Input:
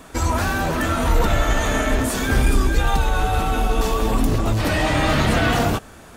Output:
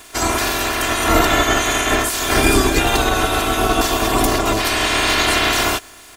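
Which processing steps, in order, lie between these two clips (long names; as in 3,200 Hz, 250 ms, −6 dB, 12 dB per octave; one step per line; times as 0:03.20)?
ceiling on every frequency bin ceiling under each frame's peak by 21 dB
bit reduction 9 bits
comb filter 2.9 ms, depth 64%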